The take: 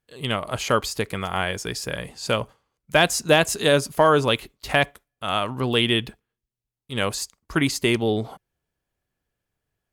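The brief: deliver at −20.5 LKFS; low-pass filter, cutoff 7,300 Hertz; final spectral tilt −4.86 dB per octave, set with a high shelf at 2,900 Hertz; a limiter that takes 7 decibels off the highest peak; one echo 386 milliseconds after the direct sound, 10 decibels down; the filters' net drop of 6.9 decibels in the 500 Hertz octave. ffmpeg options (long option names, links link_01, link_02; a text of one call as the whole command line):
ffmpeg -i in.wav -af "lowpass=7300,equalizer=frequency=500:width_type=o:gain=-8.5,highshelf=frequency=2900:gain=-8,alimiter=limit=-15dB:level=0:latency=1,aecho=1:1:386:0.316,volume=8.5dB" out.wav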